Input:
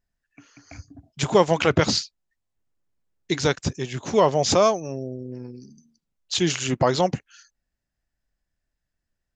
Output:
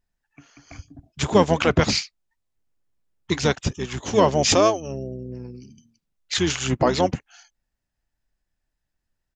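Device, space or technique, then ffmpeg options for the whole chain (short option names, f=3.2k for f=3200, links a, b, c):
octave pedal: -filter_complex "[0:a]asettb=1/sr,asplit=3[a][b][c];[a]atrim=end=3.914[d];[b]atrim=start=3.91:end=4.61,asetpts=PTS-STARTPTS,afade=t=in:d=0.004:c=qsin,afade=t=out:st=0.696:d=0.004:c=qsin,highshelf=f=3.5k:g=5[e];[c]atrim=start=4.606[f];[d][e]acrossfade=d=0.004:c1=hsin:c2=qsin[g];[g][f]acrossfade=d=0.004:c1=qsin:c2=hsin,asplit=2[h][i];[i]asetrate=22050,aresample=44100,atempo=2,volume=-7dB[j];[h][j]amix=inputs=2:normalize=0"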